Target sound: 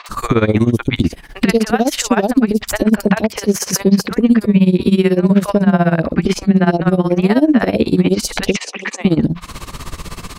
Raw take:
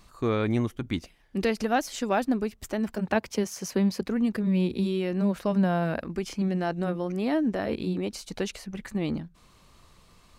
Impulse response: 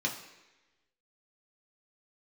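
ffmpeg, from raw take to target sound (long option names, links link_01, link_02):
-filter_complex "[0:a]acompressor=threshold=-42dB:ratio=3,asettb=1/sr,asplit=3[link_01][link_02][link_03];[link_01]atrim=end=8.474[link_04];[link_02]atrim=start=8.47:end=8.96,asetpts=PTS-STARTPTS,afade=type=in:duration=0.004:curve=qsin,afade=type=out:start_time=0.486:duration=0.004:curve=qsin,highpass=frequency=340:width=0.5412,highpass=frequency=340:width=1.3066,equalizer=frequency=650:width_type=q:width=4:gain=-5,equalizer=frequency=1500:width_type=q:width=4:gain=-7,equalizer=frequency=2500:width_type=q:width=4:gain=6,equalizer=frequency=4400:width_type=q:width=4:gain=-6,lowpass=frequency=7200:width=0.5412,lowpass=frequency=7200:width=1.3066[link_05];[link_03]atrim=start=8.956[link_06];[link_04][link_05]acrossfade=duration=0.004:curve1=hsin:curve2=qsin[link_07];[link_07][link_06]acrossfade=duration=0.004:curve1=qsin:curve2=hsin,acrossover=split=680|3900[link_08][link_09][link_10];[link_10]adelay=60[link_11];[link_08]adelay=90[link_12];[link_12][link_09][link_11]amix=inputs=3:normalize=0,tremolo=f=16:d=0.87,asettb=1/sr,asplit=3[link_13][link_14][link_15];[link_13]atrim=end=5.704[link_16];[link_14]atrim=start=5.7:end=6.92,asetpts=PTS-STARTPTS,afade=type=in:duration=0.004:curve=qsin,afade=type=out:start_time=1.216:duration=0.004:curve=qsin,highshelf=frequency=5300:gain=-7.5[link_17];[link_15]atrim=start=6.916[link_18];[link_16][link_17]acrossfade=duration=0.004:curve1=hsin:curve2=qsin[link_19];[link_19][link_18]acrossfade=duration=0.004:curve1=qsin:curve2=hsin,alimiter=level_in=33dB:limit=-1dB:release=50:level=0:latency=1,volume=-1dB"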